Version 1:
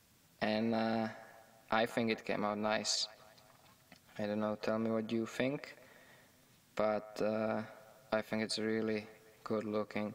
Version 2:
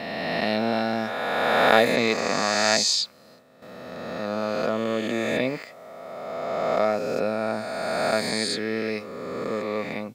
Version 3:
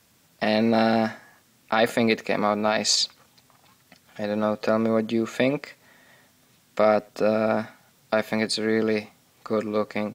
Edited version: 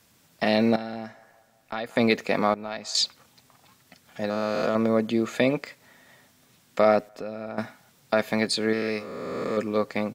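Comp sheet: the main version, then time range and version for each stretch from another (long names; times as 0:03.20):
3
0:00.76–0:01.96: punch in from 1
0:02.54–0:02.95: punch in from 1
0:04.30–0:04.75: punch in from 2
0:07.09–0:07.58: punch in from 1
0:08.73–0:09.57: punch in from 2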